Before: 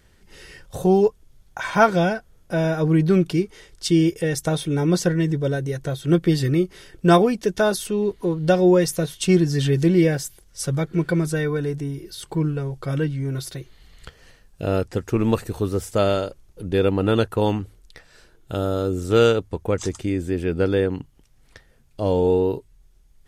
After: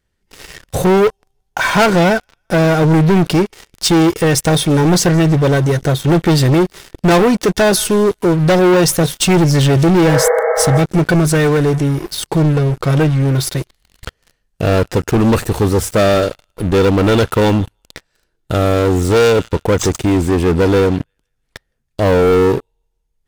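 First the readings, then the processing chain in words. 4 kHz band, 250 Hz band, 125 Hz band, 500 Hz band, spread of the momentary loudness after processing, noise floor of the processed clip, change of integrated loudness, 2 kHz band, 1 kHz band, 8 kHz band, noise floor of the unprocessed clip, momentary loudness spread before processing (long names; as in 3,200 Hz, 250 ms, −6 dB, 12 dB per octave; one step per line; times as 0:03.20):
+11.0 dB, +7.5 dB, +9.0 dB, +7.5 dB, 7 LU, −68 dBFS, +8.0 dB, +10.0 dB, +8.5 dB, +12.5 dB, −56 dBFS, 12 LU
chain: delay with a high-pass on its return 163 ms, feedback 51%, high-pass 1,400 Hz, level −21.5 dB
leveller curve on the samples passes 5
healed spectral selection 0:10.12–0:10.76, 390–2,200 Hz
level −4 dB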